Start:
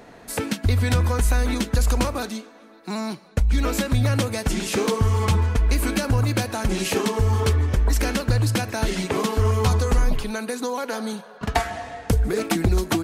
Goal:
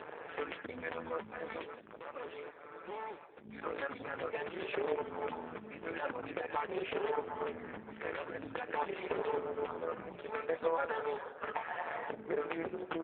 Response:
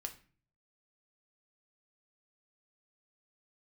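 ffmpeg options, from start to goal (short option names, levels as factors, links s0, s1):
-filter_complex "[0:a]agate=range=0.355:threshold=0.00891:ratio=16:detection=peak,aecho=1:1:2.3:0.9,acompressor=mode=upward:threshold=0.0447:ratio=2.5,alimiter=limit=0.168:level=0:latency=1:release=305,acompressor=threshold=0.0447:ratio=3,asplit=3[s0][s1][s2];[s0]afade=t=out:st=1.62:d=0.02[s3];[s1]asoftclip=type=hard:threshold=0.0178,afade=t=in:st=1.62:d=0.02,afade=t=out:st=3.44:d=0.02[s4];[s2]afade=t=in:st=3.44:d=0.02[s5];[s3][s4][s5]amix=inputs=3:normalize=0,flanger=delay=0.4:depth=5.7:regen=89:speed=1.3:shape=triangular,tremolo=f=160:d=0.75,aeval=exprs='0.0944*(cos(1*acos(clip(val(0)/0.0944,-1,1)))-cos(1*PI/2))+0.0075*(cos(3*acos(clip(val(0)/0.0944,-1,1)))-cos(3*PI/2))+0.0075*(cos(6*acos(clip(val(0)/0.0944,-1,1)))-cos(6*PI/2))+0.0106*(cos(8*acos(clip(val(0)/0.0944,-1,1)))-cos(8*PI/2))':c=same,highpass=400,lowpass=2500,asplit=2[s6][s7];[s7]asplit=3[s8][s9][s10];[s8]adelay=177,afreqshift=-35,volume=0.0944[s11];[s9]adelay=354,afreqshift=-70,volume=0.0359[s12];[s10]adelay=531,afreqshift=-105,volume=0.0136[s13];[s11][s12][s13]amix=inputs=3:normalize=0[s14];[s6][s14]amix=inputs=2:normalize=0,volume=2.66" -ar 8000 -c:a libopencore_amrnb -b:a 5150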